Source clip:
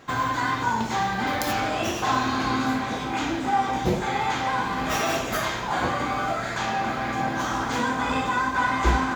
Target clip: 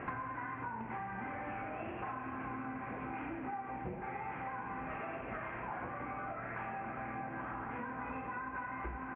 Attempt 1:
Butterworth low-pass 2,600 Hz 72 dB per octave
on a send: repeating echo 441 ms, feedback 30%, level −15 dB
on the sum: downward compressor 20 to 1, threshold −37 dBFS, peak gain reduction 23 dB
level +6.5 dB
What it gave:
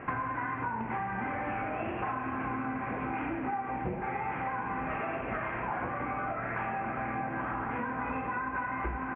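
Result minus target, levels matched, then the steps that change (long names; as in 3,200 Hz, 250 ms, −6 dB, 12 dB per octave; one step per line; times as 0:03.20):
downward compressor: peak gain reduction −7.5 dB
change: downward compressor 20 to 1, threshold −45 dBFS, peak gain reduction 30.5 dB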